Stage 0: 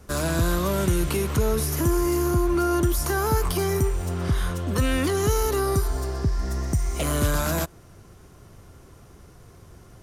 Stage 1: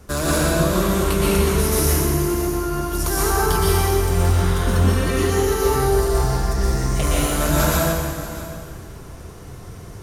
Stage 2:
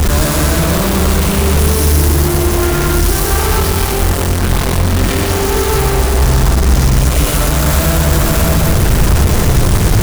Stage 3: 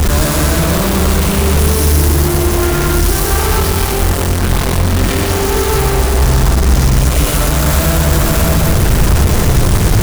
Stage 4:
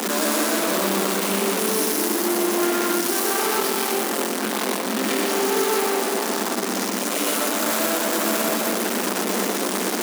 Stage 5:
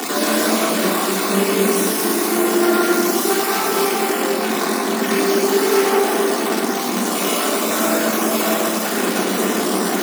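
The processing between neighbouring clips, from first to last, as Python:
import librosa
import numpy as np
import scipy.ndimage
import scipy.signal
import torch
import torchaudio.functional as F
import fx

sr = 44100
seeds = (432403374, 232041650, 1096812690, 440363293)

y1 = fx.over_compress(x, sr, threshold_db=-25.0, ratio=-0.5)
y1 = y1 + 10.0 ** (-16.0 / 20.0) * np.pad(y1, (int(634 * sr / 1000.0), 0))[:len(y1)]
y1 = fx.rev_plate(y1, sr, seeds[0], rt60_s=2.1, hf_ratio=0.85, predelay_ms=105, drr_db=-7.0)
y2 = np.sign(y1) * np.sqrt(np.mean(np.square(y1)))
y2 = fx.low_shelf(y2, sr, hz=170.0, db=9.5)
y2 = y2 + 10.0 ** (-4.5 / 20.0) * np.pad(y2, (int(121 * sr / 1000.0), 0))[:len(y2)]
y2 = y2 * librosa.db_to_amplitude(2.5)
y3 = y2
y4 = scipy.signal.sosfilt(scipy.signal.butter(16, 200.0, 'highpass', fs=sr, output='sos'), y3)
y4 = y4 * librosa.db_to_amplitude(-5.5)
y5 = fx.spec_dropout(y4, sr, seeds[1], share_pct=30)
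y5 = fx.room_shoebox(y5, sr, seeds[2], volume_m3=2500.0, walls='mixed', distance_m=3.4)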